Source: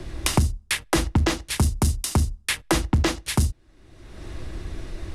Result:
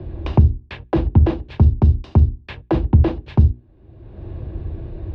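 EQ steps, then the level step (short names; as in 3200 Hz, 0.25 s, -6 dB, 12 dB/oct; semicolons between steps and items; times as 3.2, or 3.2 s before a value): speaker cabinet 110–3600 Hz, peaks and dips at 170 Hz -8 dB, 270 Hz -6 dB, 1300 Hz -8 dB, 2000 Hz -9 dB, 3200 Hz -3 dB; tilt -4.5 dB/oct; notches 60/120/180/240/300/360/420 Hz; 0.0 dB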